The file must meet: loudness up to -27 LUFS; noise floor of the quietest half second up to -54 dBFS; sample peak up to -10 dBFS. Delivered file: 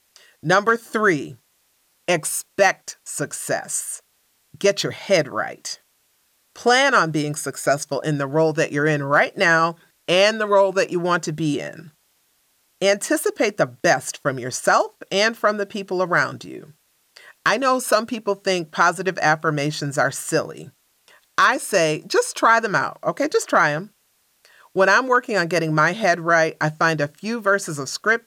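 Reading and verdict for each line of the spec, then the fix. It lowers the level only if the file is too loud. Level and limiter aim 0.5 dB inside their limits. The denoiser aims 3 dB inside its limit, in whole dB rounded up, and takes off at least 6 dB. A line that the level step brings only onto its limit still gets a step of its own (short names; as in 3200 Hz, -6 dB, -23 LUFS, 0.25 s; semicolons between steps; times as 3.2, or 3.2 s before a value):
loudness -20.0 LUFS: fail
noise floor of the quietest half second -64 dBFS: OK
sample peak -5.5 dBFS: fail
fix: gain -7.5 dB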